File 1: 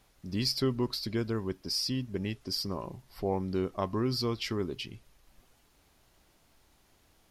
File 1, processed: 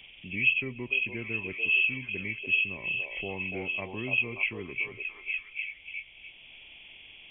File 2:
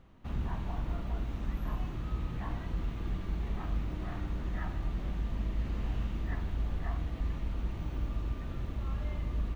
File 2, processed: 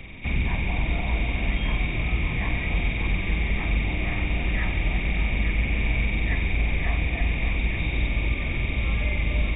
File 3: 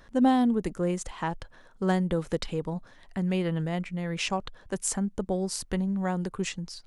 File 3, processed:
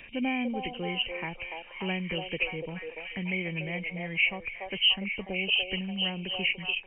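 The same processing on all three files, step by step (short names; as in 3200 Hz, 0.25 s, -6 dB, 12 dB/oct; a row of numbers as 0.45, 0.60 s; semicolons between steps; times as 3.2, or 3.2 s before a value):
nonlinear frequency compression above 2100 Hz 4:1; resonant high shelf 1800 Hz +8.5 dB, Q 3; on a send: delay with a stepping band-pass 0.29 s, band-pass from 610 Hz, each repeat 0.7 oct, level -1 dB; on the sum: three-band squash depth 40%; normalise peaks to -12 dBFS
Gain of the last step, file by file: -7.5, +9.0, -7.5 dB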